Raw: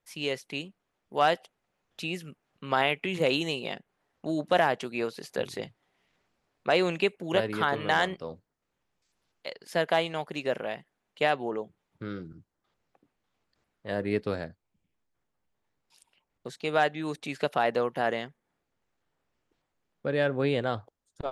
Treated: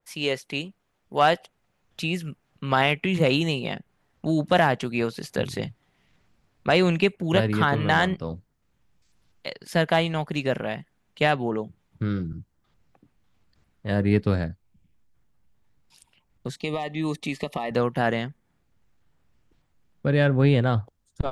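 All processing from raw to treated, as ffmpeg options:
-filter_complex "[0:a]asettb=1/sr,asplit=3[s0][s1][s2];[s0]atrim=end=16.564[s3];[s1]atrim=start=16.56:end=17.71,asetpts=PTS-STARTPTS,afade=t=in:d=0.004:c=qsin,afade=t=out:st=1.146:d=0.004:c=qsin,equalizer=f=120:w=3.5:g=-14.5,acompressor=threshold=0.0398:ratio=6:attack=3.2:release=140:knee=1:detection=peak,asuperstop=centerf=1500:order=20:qfactor=3.4[s4];[s2]atrim=start=17.706[s5];[s3][s4]acrossfade=d=0.004:c1=hsin:c2=qsin[s6];[s6][s5]acrossfade=d=0.004:c1=qsin:c2=hsin,asubboost=boost=3.5:cutoff=220,acontrast=80,adynamicequalizer=threshold=0.0224:dfrequency=2500:dqfactor=0.7:tfrequency=2500:tqfactor=0.7:attack=5:release=100:ratio=0.375:range=2:mode=cutabove:tftype=highshelf,volume=0.841"

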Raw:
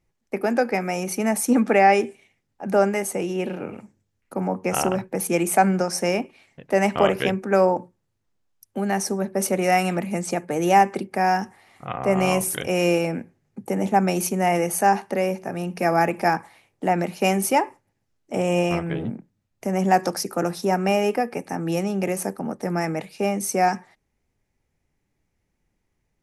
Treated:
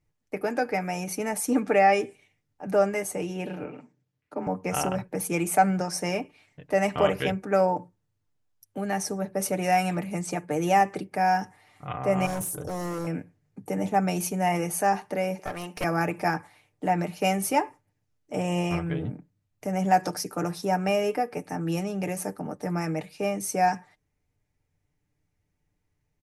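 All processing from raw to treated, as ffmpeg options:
-filter_complex "[0:a]asettb=1/sr,asplit=3[s0][s1][s2];[s0]atrim=end=3.644[s3];[s1]atrim=start=3.64:end=4.47,asetpts=PTS-STARTPTS,afade=t=in:d=0.004:c=qsin,afade=t=out:st=0.826:d=0.004:c=qsin,afreqshift=29,highpass=120,lowpass=5000[s4];[s2]atrim=start=4.466[s5];[s3][s4]acrossfade=d=0.004:c1=hsin:c2=qsin[s6];[s6][s5]acrossfade=d=0.004:c1=qsin:c2=hsin,asettb=1/sr,asplit=3[s7][s8][s9];[s7]atrim=end=12.264[s10];[s8]atrim=start=12.26:end=13.07,asetpts=PTS-STARTPTS,afade=t=in:d=0.004:c=qsin,afade=t=out:st=0.806:d=0.004:c=qsin,asuperstop=centerf=2500:order=4:qfactor=0.51,volume=14.1,asoftclip=hard,volume=0.0708[s11];[s9]atrim=start=13.066[s12];[s10][s11]acrossfade=d=0.004:c1=hsin:c2=qsin[s13];[s13][s12]acrossfade=d=0.004:c1=qsin:c2=hsin,asettb=1/sr,asplit=3[s14][s15][s16];[s14]atrim=end=15.394[s17];[s15]atrim=start=15.39:end=15.84,asetpts=PTS-STARTPTS,afade=t=in:d=0.004:c=qsin,afade=t=out:st=0.446:d=0.004:c=qsin,highpass=470,acontrast=45,aeval=exprs='clip(val(0),-1,0.0335)':c=same[s18];[s16]atrim=start=15.836[s19];[s17][s18]acrossfade=d=0.004:c1=hsin:c2=qsin[s20];[s20][s19]acrossfade=d=0.004:c1=qsin:c2=hsin,equalizer=f=86:t=o:w=0.51:g=14,aecho=1:1:6.7:0.54,volume=0.531"

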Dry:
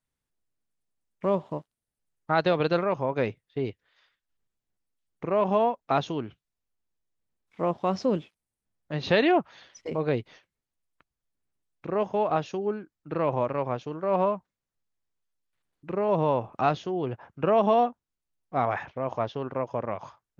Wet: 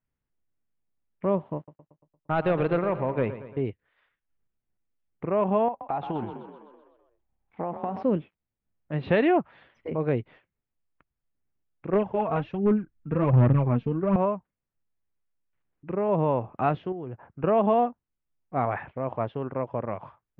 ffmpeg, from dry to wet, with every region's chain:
-filter_complex "[0:a]asettb=1/sr,asplit=3[s0][s1][s2];[s0]atrim=end=1.564[s3];[s1]atrim=start=1.56:end=3.61,asetpts=PTS-STARTPTS,afade=t=in:d=0.004:c=qsin,afade=t=out:st=2.046:d=0.004:c=qsin,asoftclip=type=hard:threshold=0.133,agate=range=0.2:threshold=0.00282:ratio=16:release=100:detection=peak,aecho=1:1:115|230|345|460|575|690:0.224|0.123|0.0677|0.0372|0.0205|0.0113,atrim=end_sample=90405[s4];[s2]atrim=start=3.606[s5];[s3][s4]acrossfade=d=0.004:c1=hsin:c2=qsin[s6];[s6][s5]acrossfade=d=0.004:c1=qsin:c2=hsin,asettb=1/sr,asplit=3[s7][s8][s9];[s7]atrim=end=5.684[s10];[s8]atrim=start=5.68:end=8.03,asetpts=PTS-STARTPTS,afade=t=in:d=0.004:c=qsin,afade=t=out:st=2.346:d=0.004:c=qsin,equalizer=f=800:t=o:w=0.45:g=13.5,acompressor=threshold=0.0562:ratio=8:attack=3.2:release=140:knee=1:detection=peak,asplit=8[s11][s12][s13][s14][s15][s16][s17][s18];[s12]adelay=127,afreqshift=34,volume=0.376[s19];[s13]adelay=254,afreqshift=68,volume=0.221[s20];[s14]adelay=381,afreqshift=102,volume=0.13[s21];[s15]adelay=508,afreqshift=136,volume=0.0776[s22];[s16]adelay=635,afreqshift=170,volume=0.0457[s23];[s17]adelay=762,afreqshift=204,volume=0.0269[s24];[s18]adelay=889,afreqshift=238,volume=0.0158[s25];[s11][s19][s20][s21][s22][s23][s24][s25]amix=inputs=8:normalize=0,atrim=end_sample=103635[s26];[s9]atrim=start=8.026[s27];[s10][s26]acrossfade=d=0.004:c1=hsin:c2=qsin[s28];[s28][s27]acrossfade=d=0.004:c1=qsin:c2=hsin,asettb=1/sr,asplit=3[s29][s30][s31];[s29]atrim=end=11.934[s32];[s30]atrim=start=11.93:end=14.16,asetpts=PTS-STARTPTS,afade=t=in:d=0.004:c=qsin,afade=t=out:st=2.226:d=0.004:c=qsin,asubboost=boost=10:cutoff=230,aphaser=in_gain=1:out_gain=1:delay=4.5:decay=0.57:speed=1.3:type=sinusoidal,asoftclip=type=hard:threshold=0.141[s33];[s31]atrim=start=14.156[s34];[s32][s33]acrossfade=d=0.004:c1=hsin:c2=qsin[s35];[s35][s34]acrossfade=d=0.004:c1=qsin:c2=hsin,asettb=1/sr,asplit=3[s36][s37][s38];[s36]atrim=end=16.924[s39];[s37]atrim=start=16.92:end=17.44,asetpts=PTS-STARTPTS,afade=t=in:d=0.004:c=qsin,afade=t=out:st=0.516:d=0.004:c=qsin,highshelf=f=3500:g=-9.5,acompressor=threshold=0.0178:ratio=3:attack=3.2:release=140:knee=1:detection=peak[s40];[s38]atrim=start=17.436[s41];[s39][s40]acrossfade=d=0.004:c1=hsin:c2=qsin[s42];[s42][s41]acrossfade=d=0.004:c1=qsin:c2=hsin,lowpass=f=2700:w=0.5412,lowpass=f=2700:w=1.3066,lowshelf=f=360:g=5.5,volume=0.794"

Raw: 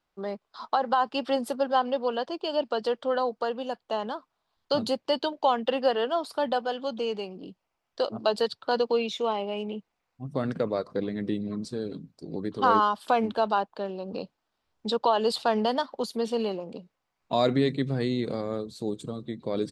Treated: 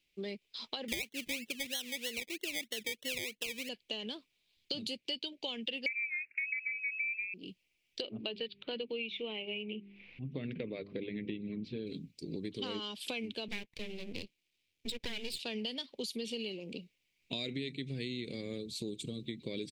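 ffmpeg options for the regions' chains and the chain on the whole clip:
-filter_complex "[0:a]asettb=1/sr,asplit=3[s0][s1][s2];[s0]atrim=end=0.884[s3];[s1]atrim=start=0.88:end=3.69,asetpts=PTS-STARTPTS,afade=t=in:d=0.004:c=qsin,afade=t=out:st=2.806:d=0.004:c=qsin,lowpass=f=1500:w=0.5412,lowpass=f=1500:w=1.3066,acrusher=samples=25:mix=1:aa=0.000001:lfo=1:lforange=15:lforate=3.1[s4];[s2]atrim=start=3.686[s5];[s3][s4]acrossfade=d=0.004:c1=hsin:c2=qsin[s6];[s6][s5]acrossfade=d=0.004:c1=qsin:c2=hsin,asettb=1/sr,asplit=3[s7][s8][s9];[s7]atrim=end=5.864[s10];[s8]atrim=start=5.86:end=7.34,asetpts=PTS-STARTPTS,afade=t=in:d=0.004:c=qsin,afade=t=out:st=1.476:d=0.004:c=qsin,lowpass=f=2400:t=q:w=0.5098,lowpass=f=2400:t=q:w=0.6013,lowpass=f=2400:t=q:w=0.9,lowpass=f=2400:t=q:w=2.563,afreqshift=-2800,asoftclip=type=hard:threshold=0.2[s11];[s9]atrim=start=7.336[s12];[s10][s11]acrossfade=d=0.004:c1=hsin:c2=qsin[s13];[s13][s12]acrossfade=d=0.004:c1=qsin:c2=hsin,asettb=1/sr,asplit=3[s14][s15][s16];[s14]atrim=end=8.014[s17];[s15]atrim=start=8.01:end=11.87,asetpts=PTS-STARTPTS,afade=t=in:d=0.004:c=qsin,afade=t=out:st=3.856:d=0.004:c=qsin,lowpass=f=3000:w=0.5412,lowpass=f=3000:w=1.3066,bandreject=f=50:t=h:w=6,bandreject=f=100:t=h:w=6,bandreject=f=150:t=h:w=6,bandreject=f=200:t=h:w=6,bandreject=f=250:t=h:w=6,bandreject=f=300:t=h:w=6,bandreject=f=350:t=h:w=6,bandreject=f=400:t=h:w=6,acompressor=mode=upward:threshold=0.0158:ratio=2.5:attack=3.2:release=140:knee=2.83:detection=peak[s18];[s16]atrim=start=11.866[s19];[s17][s18]acrossfade=d=0.004:c1=hsin:c2=qsin[s20];[s20][s19]acrossfade=d=0.004:c1=qsin:c2=hsin,asettb=1/sr,asplit=3[s21][s22][s23];[s21]atrim=end=13.484[s24];[s22]atrim=start=13.48:end=15.39,asetpts=PTS-STARTPTS,afade=t=in:d=0.004:c=qsin,afade=t=out:st=1.906:d=0.004:c=qsin,highpass=54,afreqshift=14,aeval=exprs='max(val(0),0)':c=same[s25];[s23]atrim=start=15.386[s26];[s24][s25]acrossfade=d=0.004:c1=hsin:c2=qsin[s27];[s27][s26]acrossfade=d=0.004:c1=qsin:c2=hsin,firequalizer=gain_entry='entry(390,0);entry(730,-16);entry(1300,-18);entry(2300,14);entry(4500,7)':delay=0.05:min_phase=1,acompressor=threshold=0.02:ratio=6,volume=0.794"

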